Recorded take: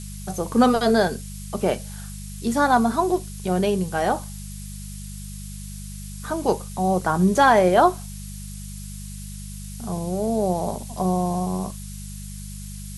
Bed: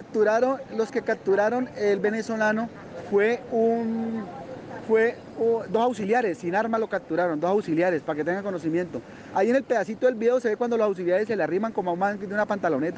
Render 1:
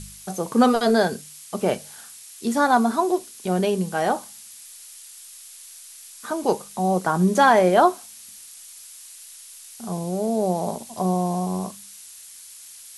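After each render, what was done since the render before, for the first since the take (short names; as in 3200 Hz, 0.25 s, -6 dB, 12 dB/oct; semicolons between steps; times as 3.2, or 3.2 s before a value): de-hum 50 Hz, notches 4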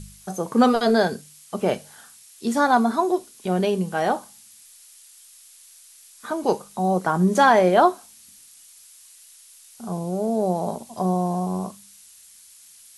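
noise print and reduce 6 dB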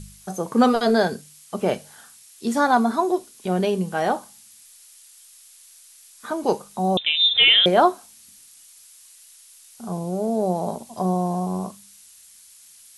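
6.97–7.66 inverted band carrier 3800 Hz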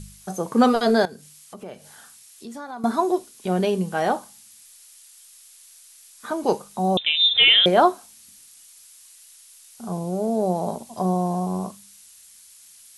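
1.05–2.84 compressor 2.5:1, threshold -41 dBFS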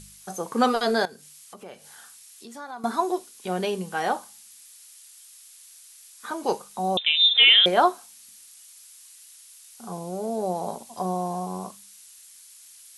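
low shelf 370 Hz -10.5 dB; notch 630 Hz, Q 14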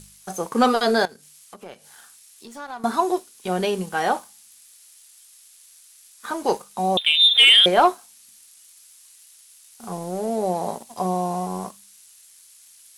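sample leveller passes 1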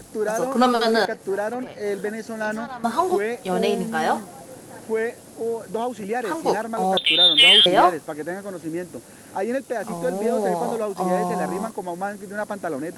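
add bed -3.5 dB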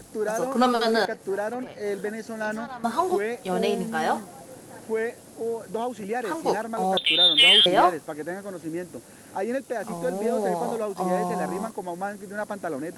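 gain -3 dB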